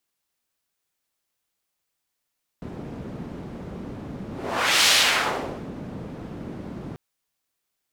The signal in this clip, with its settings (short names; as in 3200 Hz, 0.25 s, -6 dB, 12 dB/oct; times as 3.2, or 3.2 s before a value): whoosh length 4.34 s, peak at 2.25, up 0.62 s, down 0.87 s, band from 220 Hz, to 3800 Hz, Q 1, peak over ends 18.5 dB